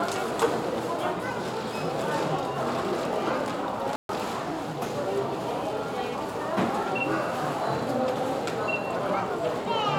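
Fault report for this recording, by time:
0:03.96–0:04.09: drop-out 132 ms

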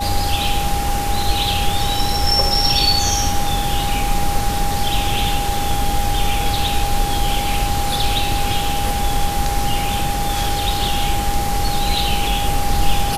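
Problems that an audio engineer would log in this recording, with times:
whistle 810 Hz −22 dBFS

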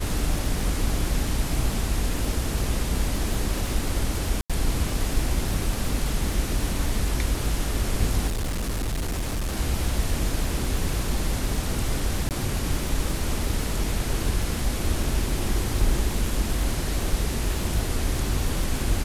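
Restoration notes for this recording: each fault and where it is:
surface crackle 120 per second −30 dBFS
0:04.41–0:04.50: drop-out 86 ms
0:08.27–0:09.57: clipping −23.5 dBFS
0:12.29–0:12.31: drop-out 18 ms

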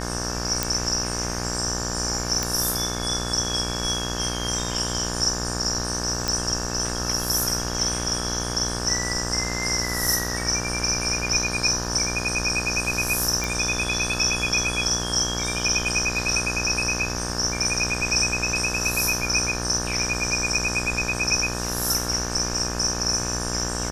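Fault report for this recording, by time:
mains buzz 60 Hz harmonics 30 −30 dBFS
0:00.63: click
0:02.43: click −8 dBFS
0:06.28: click
0:13.44: click

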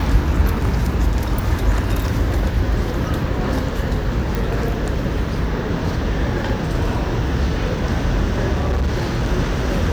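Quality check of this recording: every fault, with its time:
0:04.35: click
0:08.52–0:09.27: clipping −15 dBFS

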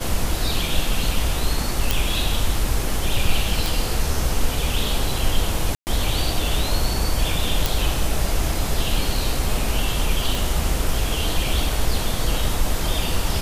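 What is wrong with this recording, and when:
0:01.91: click
0:03.66: click
0:05.75–0:05.87: drop-out 119 ms
0:07.66: click
0:10.35: click

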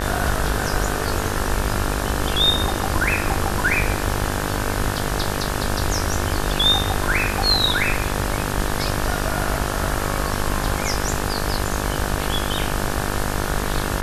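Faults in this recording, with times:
mains buzz 50 Hz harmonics 36 −26 dBFS

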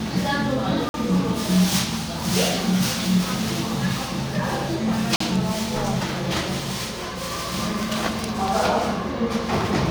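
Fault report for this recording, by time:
0:00.89–0:00.94: drop-out 51 ms
0:05.16–0:05.20: drop-out 44 ms

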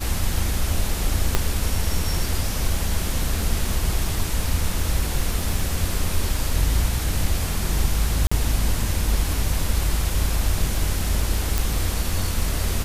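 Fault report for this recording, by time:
surface crackle 10 per second −26 dBFS
0:01.35: click −3 dBFS
0:08.27–0:08.31: drop-out 45 ms
0:11.58: click

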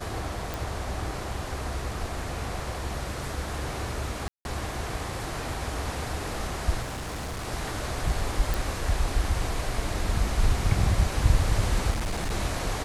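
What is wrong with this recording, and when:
0:00.54: click
0:04.28–0:04.45: drop-out 171 ms
0:06.82–0:07.48: clipping −30.5 dBFS
0:08.54: click
0:11.90–0:12.32: clipping −25 dBFS

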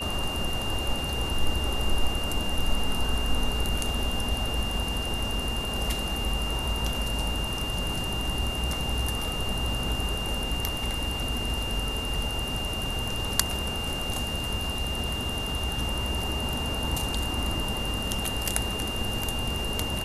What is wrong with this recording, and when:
whistle 2,800 Hz −32 dBFS

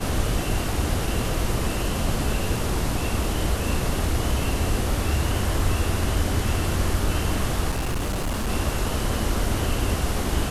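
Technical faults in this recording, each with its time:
0:07.70–0:08.50: clipping −22 dBFS

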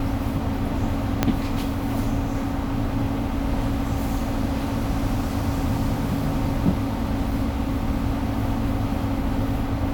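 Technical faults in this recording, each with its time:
0:01.23: click −4 dBFS

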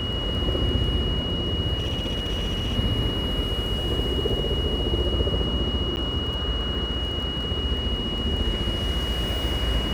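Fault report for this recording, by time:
surface crackle 11 per second
whistle 2,900 Hz −29 dBFS
0:01.78–0:02.78: clipping −22 dBFS
0:05.96–0:05.97: drop-out 9.9 ms

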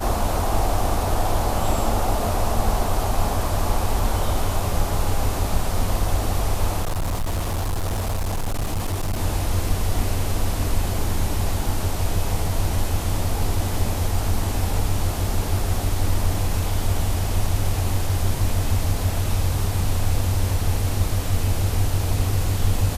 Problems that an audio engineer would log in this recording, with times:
0:06.82–0:09.19: clipping −20 dBFS

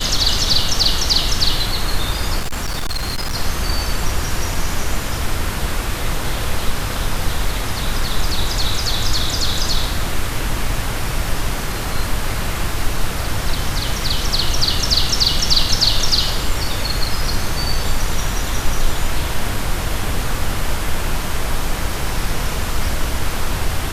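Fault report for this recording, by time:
0:02.39–0:03.36: clipping −17.5 dBFS

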